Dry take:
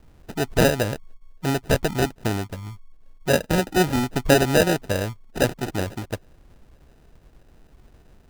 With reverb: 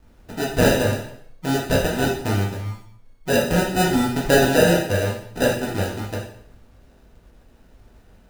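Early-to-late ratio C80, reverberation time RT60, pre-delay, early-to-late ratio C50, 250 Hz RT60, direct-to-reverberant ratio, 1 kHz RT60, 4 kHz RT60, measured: 8.0 dB, 0.65 s, 4 ms, 4.0 dB, 0.70 s, -4.5 dB, 0.65 s, 0.60 s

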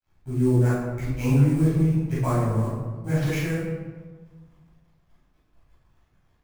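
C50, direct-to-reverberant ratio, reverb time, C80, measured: -1.5 dB, -12.5 dB, 1.4 s, 2.5 dB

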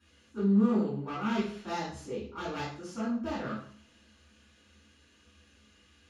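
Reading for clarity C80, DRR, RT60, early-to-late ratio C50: 7.5 dB, -12.0 dB, 0.50 s, 2.5 dB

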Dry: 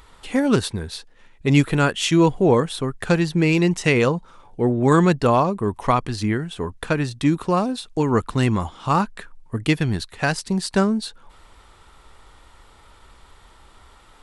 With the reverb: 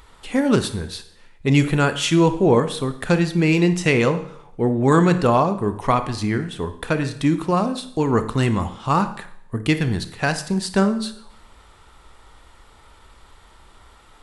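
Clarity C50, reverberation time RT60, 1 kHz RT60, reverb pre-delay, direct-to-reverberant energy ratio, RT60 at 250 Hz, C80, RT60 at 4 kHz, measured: 11.5 dB, 0.70 s, 0.65 s, 28 ms, 9.5 dB, 0.65 s, 15.0 dB, 0.65 s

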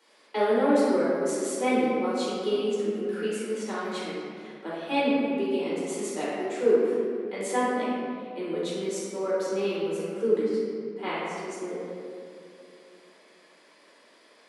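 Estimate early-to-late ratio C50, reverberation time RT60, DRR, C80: -3.5 dB, 2.6 s, -9.5 dB, -0.5 dB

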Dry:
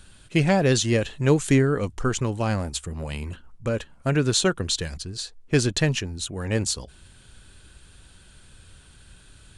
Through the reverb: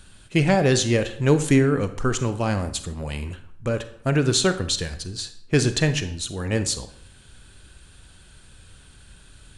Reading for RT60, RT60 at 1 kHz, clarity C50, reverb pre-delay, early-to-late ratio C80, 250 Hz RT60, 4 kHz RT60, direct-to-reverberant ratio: 0.70 s, 0.65 s, 12.5 dB, 32 ms, 15.5 dB, 0.65 s, 0.45 s, 10.0 dB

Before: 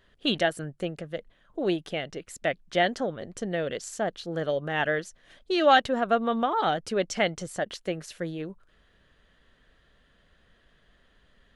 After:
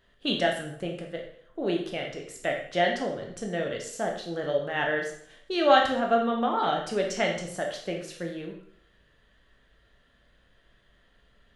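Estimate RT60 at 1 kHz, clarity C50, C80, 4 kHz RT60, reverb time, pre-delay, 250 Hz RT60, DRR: 0.65 s, 5.5 dB, 9.0 dB, 0.60 s, 0.65 s, 6 ms, 0.65 s, 1.0 dB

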